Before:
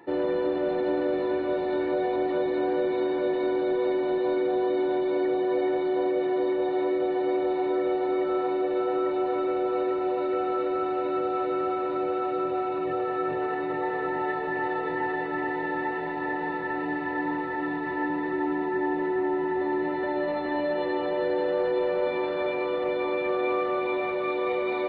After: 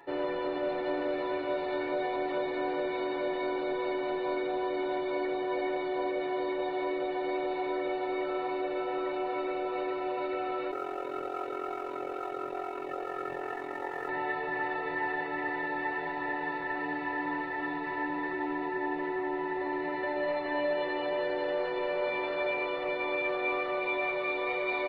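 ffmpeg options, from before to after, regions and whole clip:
-filter_complex "[0:a]asettb=1/sr,asplit=3[s0][s1][s2];[s0]atrim=end=10.714[s3];[s1]atrim=start=10.71:end=14.09,asetpts=PTS-STARTPTS,afade=t=in:d=0.004:c=qsin,afade=t=out:st=3.376:d=0.004:c=qsin,lowpass=3700,tremolo=f=44:d=0.947,aeval=exprs='sgn(val(0))*max(abs(val(0))-0.00133,0)':c=same[s4];[s2]atrim=start=14.086[s5];[s3][s4]acrossfade=d=0.004:c1=hsin:c2=qsin[s6];[s6][s5]acrossfade=d=0.004:c1=qsin:c2=hsin,equalizer=f=210:w=0.64:g=-10.5,bandreject=f=60:t=h:w=6,bandreject=f=120:t=h:w=6,bandreject=f=180:t=h:w=6,bandreject=f=240:t=h:w=6,bandreject=f=300:t=h:w=6,aecho=1:1:7.2:0.53"

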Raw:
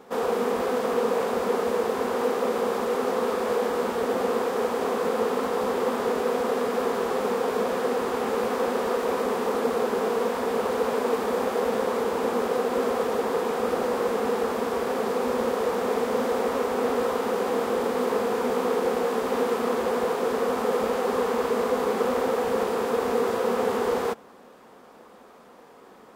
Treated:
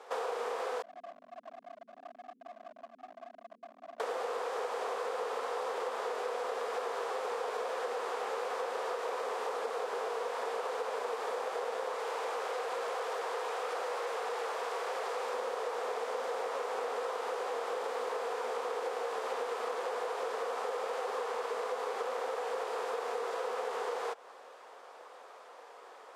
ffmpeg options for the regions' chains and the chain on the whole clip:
-filter_complex "[0:a]asettb=1/sr,asplit=3[s0][s1][s2];[s0]atrim=end=0.824[s3];[s1]atrim=start=0.82:end=4,asetpts=PTS-STARTPTS,afade=t=in:d=0.004:c=qsin,afade=t=out:st=3.176:d=0.004:c=qsin,asuperpass=centerf=170:order=12:qfactor=1.2,aeval=exprs='0.0141*(abs(mod(val(0)/0.0141+3,4)-2)-1)':c=same[s4];[s2]atrim=start=3.996[s5];[s3][s4]acrossfade=d=0.004:c1=hsin:c2=qsin[s6];[s6][s5]acrossfade=d=0.004:c1=qsin:c2=hsin,asettb=1/sr,asplit=3[s7][s8][s9];[s7]atrim=end=11.954[s10];[s8]atrim=start=11.95:end=15.33,asetpts=PTS-STARTPTS,afade=t=in:d=0.004:c=qsin,afade=t=out:st=3.376:d=0.004:c=qsin,highpass=f=450:p=1,asoftclip=type=hard:threshold=0.0631[s11];[s9]atrim=start=15.326[s12];[s10][s11]acrossfade=d=0.004:c1=hsin:c2=qsin[s13];[s13][s12]acrossfade=d=0.004:c1=qsin:c2=hsin,highpass=f=490:w=0.5412,highpass=f=490:w=1.3066,acompressor=threshold=0.0224:ratio=6,lowpass=8800"

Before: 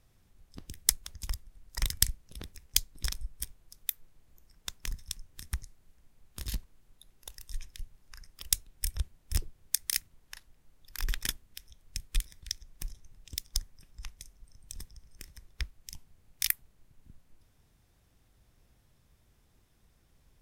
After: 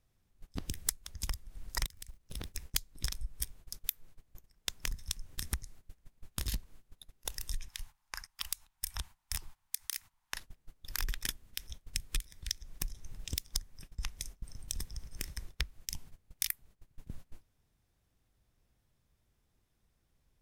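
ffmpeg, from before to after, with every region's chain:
-filter_complex "[0:a]asettb=1/sr,asplit=3[s0][s1][s2];[s0]atrim=end=1.864[s3];[s1]atrim=start=1.86:end=2.51,asetpts=PTS-STARTPTS,afade=t=in:d=0.004:c=qsin,afade=t=out:st=0.646:d=0.004:c=qsin,acompressor=threshold=0.00447:ratio=8:attack=3.2:release=140:knee=1:detection=peak,acrusher=bits=6:mode=log:mix=0:aa=0.000001[s4];[s2]atrim=start=2.506[s5];[s3][s4]acrossfade=d=0.004:c1=hsin:c2=qsin[s6];[s6][s5]acrossfade=d=0.004:c1=qsin:c2=hsin,asettb=1/sr,asplit=3[s7][s8][s9];[s7]atrim=end=7.684[s10];[s8]atrim=start=7.68:end=10.34,asetpts=PTS-STARTPTS,afade=t=in:d=0.004:c=qsin,afade=t=out:st=2.656:d=0.004:c=qsin,lowshelf=f=650:t=q:w=3:g=-11,acompressor=threshold=0.0141:ratio=4:attack=3.2:release=140:knee=1:detection=peak[s11];[s9]atrim=start=10.336[s12];[s10][s11]acrossfade=d=0.004:c1=hsin:c2=qsin[s13];[s13][s12]acrossfade=d=0.004:c1=qsin:c2=hsin,agate=range=0.1:threshold=0.00224:ratio=16:detection=peak,acompressor=threshold=0.00562:ratio=4,volume=3.55"

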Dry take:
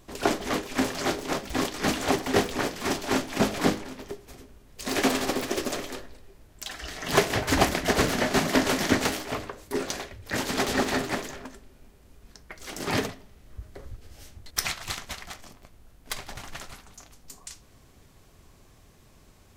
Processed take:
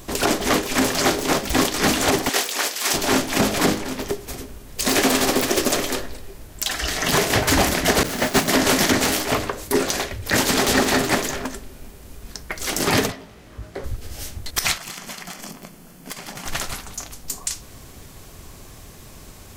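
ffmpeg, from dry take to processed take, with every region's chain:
-filter_complex "[0:a]asettb=1/sr,asplit=3[s0][s1][s2];[s0]atrim=end=2.294[s3];[s1]atrim=start=2.29:end=2.94,asetpts=PTS-STARTPTS,afade=t=in:d=0.004:c=qsin,afade=t=out:st=0.646:d=0.004:c=qsin,highpass=750,equalizer=f=1000:t=o:w=2.7:g=-6.5[s4];[s2]atrim=start=2.936[s5];[s3][s4]acrossfade=d=0.004:c1=hsin:c2=qsin[s6];[s6][s5]acrossfade=d=0.004:c1=qsin:c2=hsin,asettb=1/sr,asplit=3[s7][s8][s9];[s7]atrim=end=8.034[s10];[s8]atrim=start=8.03:end=8.48,asetpts=PTS-STARTPTS,afade=t=in:d=0.004:c=qsin,afade=t=out:st=0.446:d=0.004:c=qsin,aeval=exprs='val(0)+0.5*0.0562*sgn(val(0))':c=same,agate=range=0.0224:threshold=0.178:ratio=3:release=100:detection=peak[s11];[s9]atrim=start=8.476[s12];[s10][s11]acrossfade=d=0.004:c1=hsin:c2=qsin[s13];[s13][s12]acrossfade=d=0.004:c1=qsin:c2=hsin,asettb=1/sr,asplit=3[s14][s15][s16];[s14]atrim=end=13.124[s17];[s15]atrim=start=13.12:end=13.84,asetpts=PTS-STARTPTS,afade=t=in:d=0.004:c=qsin,afade=t=out:st=0.716:d=0.004:c=qsin,highpass=f=210:p=1,aemphasis=mode=reproduction:type=50kf,asplit=2[s18][s19];[s19]adelay=18,volume=0.596[s20];[s18][s20]amix=inputs=2:normalize=0,atrim=end_sample=31752[s21];[s16]atrim=start=13.836[s22];[s17][s21]acrossfade=d=0.004:c1=hsin:c2=qsin[s23];[s23][s22]acrossfade=d=0.004:c1=qsin:c2=hsin,asettb=1/sr,asplit=3[s24][s25][s26];[s24]atrim=end=14.774[s27];[s25]atrim=start=14.77:end=16.46,asetpts=PTS-STARTPTS,afade=t=in:d=0.004:c=qsin,afade=t=out:st=1.686:d=0.004:c=qsin,lowshelf=f=120:t=q:w=3:g=-12.5,acompressor=threshold=0.00631:ratio=8:attack=3.2:release=140:knee=1:detection=peak,bandreject=f=3800:w=9.7[s28];[s26]atrim=start=16.456[s29];[s27][s28]acrossfade=d=0.004:c1=hsin:c2=qsin[s30];[s30][s29]acrossfade=d=0.004:c1=qsin:c2=hsin,highshelf=f=6400:g=7,acompressor=threshold=0.0178:ratio=1.5,alimiter=level_in=8.41:limit=0.891:release=50:level=0:latency=1,volume=0.531"

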